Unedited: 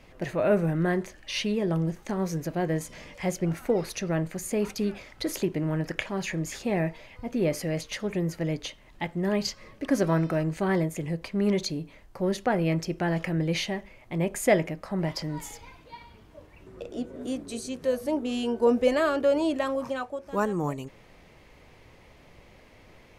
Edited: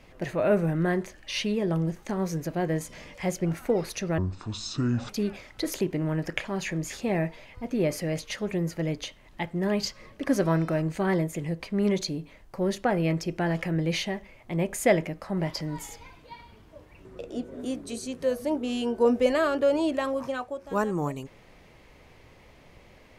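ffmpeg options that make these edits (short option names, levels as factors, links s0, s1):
-filter_complex "[0:a]asplit=3[s0][s1][s2];[s0]atrim=end=4.184[s3];[s1]atrim=start=4.18:end=4.71,asetpts=PTS-STARTPTS,asetrate=25578,aresample=44100,atrim=end_sample=40298,asetpts=PTS-STARTPTS[s4];[s2]atrim=start=4.706[s5];[s3][s4]acrossfade=d=0.004:c1=hsin:c2=hsin[s6];[s6][s5]acrossfade=d=0.004:c1=hsin:c2=hsin"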